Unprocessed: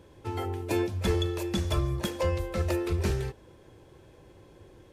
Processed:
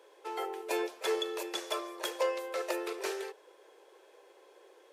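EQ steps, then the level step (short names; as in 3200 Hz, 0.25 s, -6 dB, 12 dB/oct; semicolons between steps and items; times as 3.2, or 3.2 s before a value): elliptic high-pass 410 Hz, stop band 70 dB; 0.0 dB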